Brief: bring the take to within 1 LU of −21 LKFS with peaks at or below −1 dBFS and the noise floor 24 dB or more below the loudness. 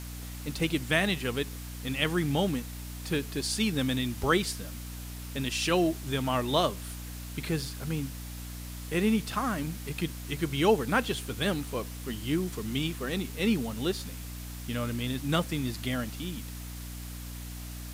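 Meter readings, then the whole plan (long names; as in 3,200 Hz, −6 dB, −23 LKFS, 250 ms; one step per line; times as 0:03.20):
mains hum 60 Hz; hum harmonics up to 300 Hz; level of the hum −38 dBFS; background noise floor −40 dBFS; target noise floor −55 dBFS; integrated loudness −31.0 LKFS; sample peak −11.5 dBFS; target loudness −21.0 LKFS
→ mains-hum notches 60/120/180/240/300 Hz
broadband denoise 15 dB, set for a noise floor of −40 dBFS
level +10 dB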